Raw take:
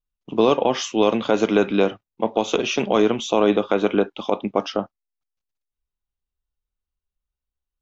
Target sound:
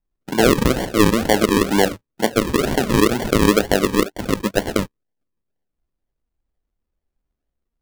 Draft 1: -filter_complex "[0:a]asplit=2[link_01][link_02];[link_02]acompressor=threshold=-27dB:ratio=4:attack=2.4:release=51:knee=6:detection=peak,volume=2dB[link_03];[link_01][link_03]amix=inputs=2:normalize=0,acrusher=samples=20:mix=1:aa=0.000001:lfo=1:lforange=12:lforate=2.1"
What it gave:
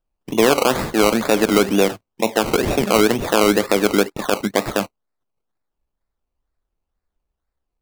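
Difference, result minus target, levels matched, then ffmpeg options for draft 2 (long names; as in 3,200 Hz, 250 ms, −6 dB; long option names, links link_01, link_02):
sample-and-hold swept by an LFO: distortion −17 dB
-filter_complex "[0:a]asplit=2[link_01][link_02];[link_02]acompressor=threshold=-27dB:ratio=4:attack=2.4:release=51:knee=6:detection=peak,volume=2dB[link_03];[link_01][link_03]amix=inputs=2:normalize=0,acrusher=samples=49:mix=1:aa=0.000001:lfo=1:lforange=29.4:lforate=2.1"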